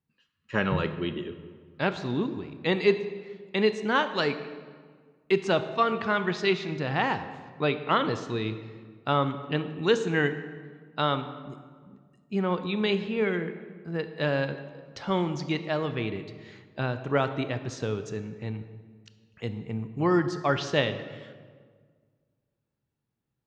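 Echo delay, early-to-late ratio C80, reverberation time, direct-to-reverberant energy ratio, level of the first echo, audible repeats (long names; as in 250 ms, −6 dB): no echo audible, 12.5 dB, 1.7 s, 10.0 dB, no echo audible, no echo audible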